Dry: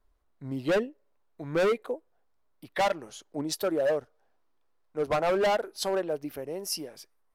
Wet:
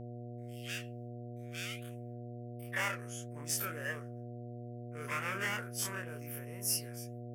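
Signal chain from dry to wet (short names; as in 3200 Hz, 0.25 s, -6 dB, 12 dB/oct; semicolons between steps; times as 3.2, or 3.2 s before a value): spectral dilation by 60 ms; gate with hold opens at -56 dBFS; passive tone stack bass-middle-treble 10-0-10; in parallel at -4 dB: overloaded stage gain 24.5 dB; on the sum: fixed phaser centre 1700 Hz, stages 4; flange 1.5 Hz, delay 3.8 ms, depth 9.7 ms, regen -68%; high-pass sweep 3600 Hz -> 220 Hz, 1.78–3.3; buzz 120 Hz, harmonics 6, -46 dBFS -5 dB/oct; gain +1 dB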